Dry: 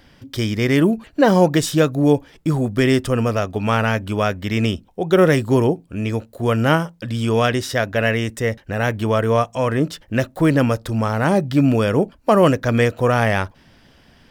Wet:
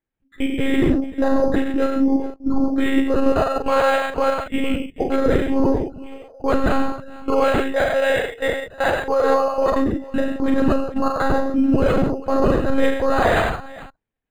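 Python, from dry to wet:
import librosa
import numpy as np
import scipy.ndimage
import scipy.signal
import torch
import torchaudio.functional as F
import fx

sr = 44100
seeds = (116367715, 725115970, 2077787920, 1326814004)

y = fx.noise_reduce_blind(x, sr, reduce_db=29)
y = fx.level_steps(y, sr, step_db=23)
y = fx.doubler(y, sr, ms=42.0, db=-4.0)
y = fx.echo_multitap(y, sr, ms=(48, 95, 134, 436), db=(-15.5, -5.5, -10.0, -18.0))
y = fx.lpc_monotone(y, sr, seeds[0], pitch_hz=270.0, order=16)
y = np.interp(np.arange(len(y)), np.arange(len(y))[::8], y[::8])
y = y * 10.0 ** (5.0 / 20.0)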